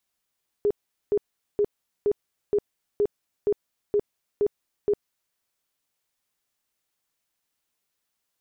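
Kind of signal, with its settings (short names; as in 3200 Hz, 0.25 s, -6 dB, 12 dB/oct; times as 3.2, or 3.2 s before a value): tone bursts 412 Hz, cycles 23, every 0.47 s, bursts 10, -18 dBFS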